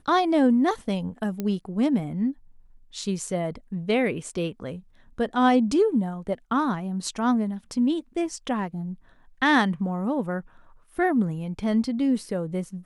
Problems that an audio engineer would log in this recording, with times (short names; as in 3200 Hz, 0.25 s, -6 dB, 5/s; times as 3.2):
1.4 pop -16 dBFS